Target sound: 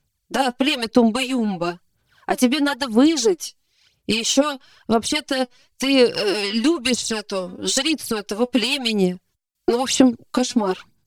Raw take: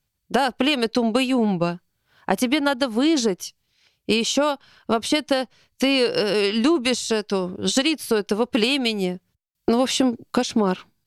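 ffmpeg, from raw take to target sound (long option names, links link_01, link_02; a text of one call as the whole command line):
ffmpeg -i in.wav -af "equalizer=frequency=7500:width_type=o:width=1.4:gain=5,aphaser=in_gain=1:out_gain=1:delay=4.1:decay=0.66:speed=1:type=sinusoidal,volume=-2.5dB" out.wav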